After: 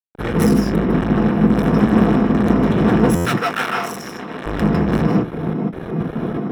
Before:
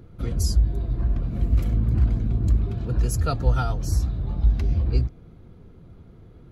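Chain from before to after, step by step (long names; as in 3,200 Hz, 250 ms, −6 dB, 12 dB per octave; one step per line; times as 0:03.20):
fade in at the beginning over 0.51 s
harmonic generator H 6 −17 dB, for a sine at −7 dBFS
gate pattern ".xxxx..xx" 160 BPM −12 dB
in parallel at −1.5 dB: downward compressor, threshold −34 dBFS, peak gain reduction 19 dB
on the sum: fuzz pedal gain 36 dB, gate −44 dBFS
0:03.20–0:04.46: high-pass filter 1,300 Hz 6 dB per octave
convolution reverb RT60 0.15 s, pre-delay 150 ms, DRR −0.5 dB
buffer that repeats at 0:03.15, samples 512, times 8
level −6 dB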